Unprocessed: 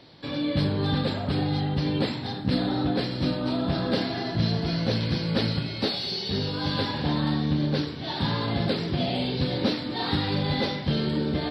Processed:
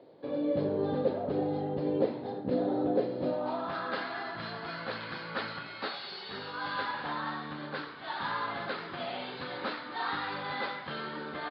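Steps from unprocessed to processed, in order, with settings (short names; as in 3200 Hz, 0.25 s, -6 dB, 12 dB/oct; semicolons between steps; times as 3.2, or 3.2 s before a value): downsampling 11025 Hz; band-pass sweep 490 Hz -> 1300 Hz, 3.17–3.76; gain +4.5 dB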